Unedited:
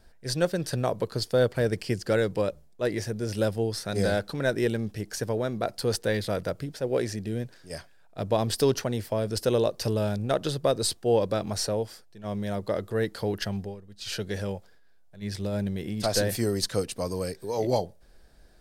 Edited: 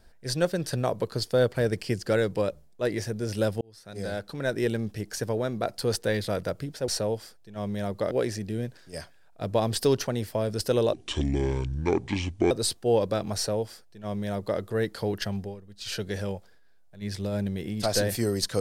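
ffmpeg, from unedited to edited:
-filter_complex "[0:a]asplit=6[s0][s1][s2][s3][s4][s5];[s0]atrim=end=3.61,asetpts=PTS-STARTPTS,afade=t=out:st=3.606:d=0.004:c=hsin[s6];[s1]atrim=start=3.61:end=6.882,asetpts=PTS-STARTPTS,afade=t=in:d=1.14[s7];[s2]atrim=start=11.558:end=12.792[s8];[s3]atrim=start=6.878:end=9.704[s9];[s4]atrim=start=9.7:end=10.71,asetpts=PTS-STARTPTS,asetrate=28224,aresample=44100,atrim=end_sample=69595,asetpts=PTS-STARTPTS[s10];[s5]atrim=start=10.706[s11];[s6][s7]concat=n=2:v=0:a=1[s12];[s12][s8]acrossfade=d=0.004:c1=hsin:c2=hsin[s13];[s13][s9]acrossfade=d=0.004:c1=hsin:c2=hsin[s14];[s14][s10]acrossfade=d=0.004:c1=hsin:c2=hsin[s15];[s15][s11]acrossfade=d=0.004:c1=hsin:c2=hsin"

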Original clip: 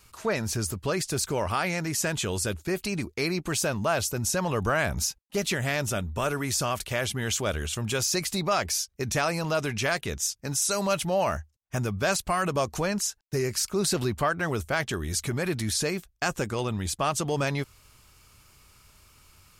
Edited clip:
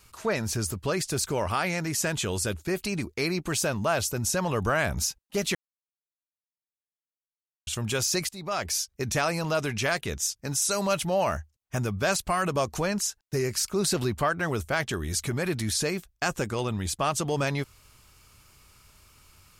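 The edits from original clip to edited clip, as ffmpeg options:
-filter_complex "[0:a]asplit=4[s0][s1][s2][s3];[s0]atrim=end=5.55,asetpts=PTS-STARTPTS,afade=t=out:st=5.546:d=0.004:c=hsin[s4];[s1]atrim=start=5.55:end=7.67,asetpts=PTS-STARTPTS,volume=0[s5];[s2]atrim=start=7.67:end=8.29,asetpts=PTS-STARTPTS,afade=t=in:d=0.004:c=hsin,afade=t=out:st=0.616:d=0.004:c=hsin:silence=0.1[s6];[s3]atrim=start=8.29,asetpts=PTS-STARTPTS,afade=t=in:d=0.47:silence=0.1[s7];[s4][s5][s6][s7]concat=n=4:v=0:a=1"

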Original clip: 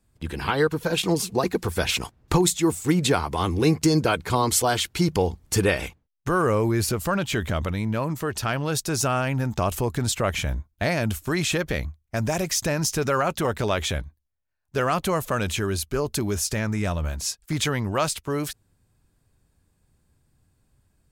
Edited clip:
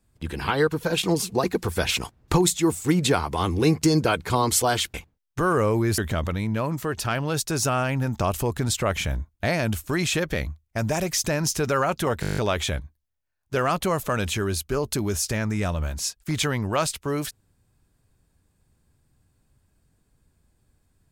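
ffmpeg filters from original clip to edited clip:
-filter_complex "[0:a]asplit=11[s0][s1][s2][s3][s4][s5][s6][s7][s8][s9][s10];[s0]atrim=end=4.942[s11];[s1]atrim=start=5.828:end=6.872[s12];[s2]atrim=start=7.358:end=13.612[s13];[s3]atrim=start=13.588:end=13.612[s14];[s4]atrim=start=13.588:end=13.612[s15];[s5]atrim=start=13.588:end=13.612[s16];[s6]atrim=start=13.588:end=13.612[s17];[s7]atrim=start=13.588:end=13.612[s18];[s8]atrim=start=13.588:end=13.612[s19];[s9]atrim=start=13.588:end=13.612[s20];[s10]atrim=start=13.588[s21];[s11][s12]acrossfade=d=0.004:c1=hsin:c2=hsin[s22];[s22][s13]acrossfade=d=0.004:c1=hsin:c2=hsin[s23];[s23][s14]acrossfade=d=0.004:c1=hsin:c2=hsin[s24];[s24][s15]acrossfade=d=0.004:c1=hsin:c2=hsin[s25];[s25][s16]acrossfade=d=0.004:c1=hsin:c2=hsin[s26];[s26][s17]acrossfade=d=0.004:c1=hsin:c2=hsin[s27];[s27][s18]acrossfade=d=0.004:c1=hsin:c2=hsin[s28];[s28][s19]acrossfade=d=0.004:c1=hsin:c2=hsin[s29];[s29][s20]acrossfade=d=0.004:c1=hsin:c2=hsin[s30];[s30][s21]acrossfade=d=0.004:c1=hsin:c2=hsin"

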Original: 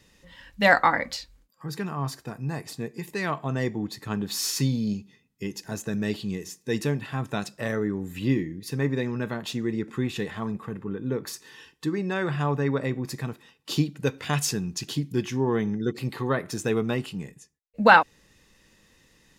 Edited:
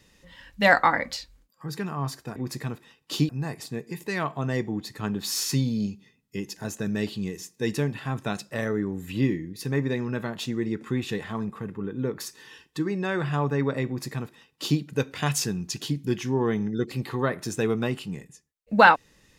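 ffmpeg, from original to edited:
-filter_complex "[0:a]asplit=3[s0][s1][s2];[s0]atrim=end=2.362[s3];[s1]atrim=start=12.938:end=13.872[s4];[s2]atrim=start=2.358[s5];[s3][s4]acrossfade=d=0.004:c1=hsin:c2=hsin[s6];[s6][s5]acrossfade=d=0.004:c1=hsin:c2=hsin"

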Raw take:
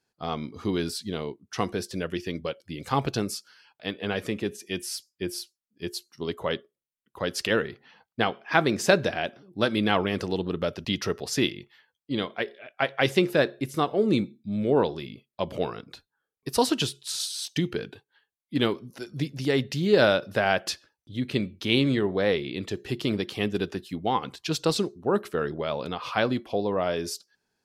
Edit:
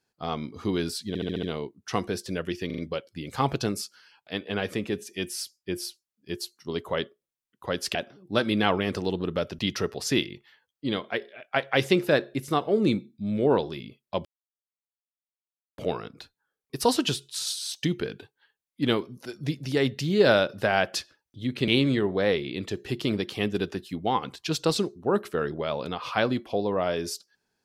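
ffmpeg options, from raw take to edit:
-filter_complex "[0:a]asplit=12[s0][s1][s2][s3][s4][s5][s6][s7][s8][s9][s10][s11];[s0]atrim=end=1.152[s12];[s1]atrim=start=1.078:end=1.152[s13];[s2]atrim=start=1.078:end=1.152[s14];[s3]atrim=start=1.078:end=1.152[s15];[s4]atrim=start=1.078:end=1.152[s16];[s5]atrim=start=1.078:end=2.352[s17];[s6]atrim=start=2.308:end=2.352[s18];[s7]atrim=start=2.308:end=2.352[s19];[s8]atrim=start=2.308:end=7.482[s20];[s9]atrim=start=9.208:end=15.51,asetpts=PTS-STARTPTS,afade=t=out:st=6.298:d=0.004:c=hsin,apad=pad_dur=1.53[s21];[s10]atrim=start=15.51:end=21.412,asetpts=PTS-STARTPTS,afade=t=in:d=0.004:c=hsin[s22];[s11]atrim=start=21.678[s23];[s12][s13]acrossfade=d=0.004:c1=hsin:c2=hsin[s24];[s24][s14]acrossfade=d=0.004:c1=hsin:c2=hsin[s25];[s25][s15]acrossfade=d=0.004:c1=hsin:c2=hsin[s26];[s26][s16]acrossfade=d=0.004:c1=hsin:c2=hsin[s27];[s27][s17]acrossfade=d=0.004:c1=hsin:c2=hsin[s28];[s28][s18]acrossfade=d=0.004:c1=hsin:c2=hsin[s29];[s29][s19]acrossfade=d=0.004:c1=hsin:c2=hsin[s30];[s30][s20]acrossfade=d=0.004:c1=hsin:c2=hsin[s31];[s21][s22]concat=n=2:v=0:a=1[s32];[s31][s32]acrossfade=d=0.004:c1=hsin:c2=hsin[s33];[s33][s23]acrossfade=d=0.004:c1=hsin:c2=hsin"

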